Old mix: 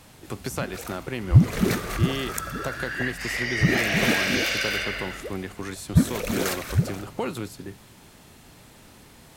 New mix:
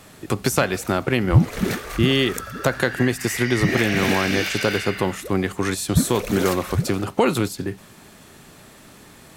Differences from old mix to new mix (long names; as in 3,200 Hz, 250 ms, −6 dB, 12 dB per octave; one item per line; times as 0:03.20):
speech +11.0 dB
second sound: add inverse Chebyshev high-pass filter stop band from 160 Hz, stop band 70 dB
reverb: off